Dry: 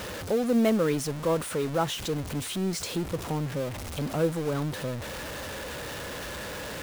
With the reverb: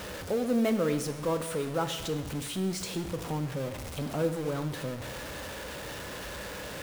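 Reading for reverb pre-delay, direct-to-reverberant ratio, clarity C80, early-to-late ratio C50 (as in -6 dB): 5 ms, 7.5 dB, 12.0 dB, 10.5 dB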